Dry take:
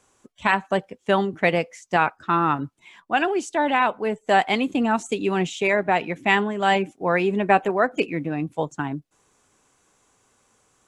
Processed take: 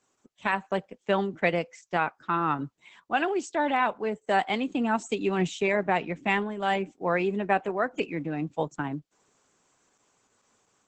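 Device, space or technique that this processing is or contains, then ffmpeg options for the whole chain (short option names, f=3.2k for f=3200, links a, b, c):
video call: -filter_complex "[0:a]asplit=3[a][b][c];[a]afade=t=out:st=5.38:d=0.02[d];[b]lowshelf=f=210:g=5.5,afade=t=in:st=5.38:d=0.02,afade=t=out:st=6.39:d=0.02[e];[c]afade=t=in:st=6.39:d=0.02[f];[d][e][f]amix=inputs=3:normalize=0,highpass=f=120:w=0.5412,highpass=f=120:w=1.3066,dynaudnorm=f=240:g=3:m=5dB,volume=-8dB" -ar 48000 -c:a libopus -b:a 12k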